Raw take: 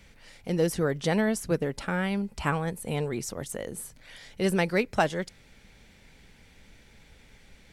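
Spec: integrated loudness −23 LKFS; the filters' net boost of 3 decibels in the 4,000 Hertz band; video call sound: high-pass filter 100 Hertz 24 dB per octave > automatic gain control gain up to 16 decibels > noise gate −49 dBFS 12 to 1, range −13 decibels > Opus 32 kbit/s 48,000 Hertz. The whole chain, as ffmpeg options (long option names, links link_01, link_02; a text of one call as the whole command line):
ffmpeg -i in.wav -af "highpass=frequency=100:width=0.5412,highpass=frequency=100:width=1.3066,equalizer=frequency=4000:width_type=o:gain=4,dynaudnorm=maxgain=16dB,agate=range=-13dB:threshold=-49dB:ratio=12,volume=6dB" -ar 48000 -c:a libopus -b:a 32k out.opus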